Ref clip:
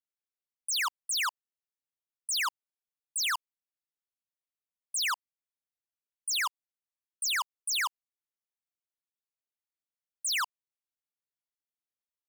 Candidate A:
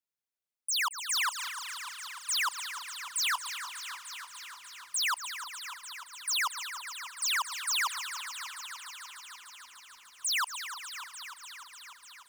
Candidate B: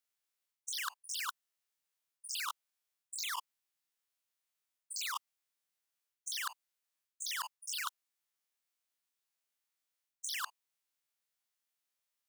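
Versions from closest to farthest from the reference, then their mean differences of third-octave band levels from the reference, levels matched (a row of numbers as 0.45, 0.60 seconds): B, A; 4.0, 6.0 decibels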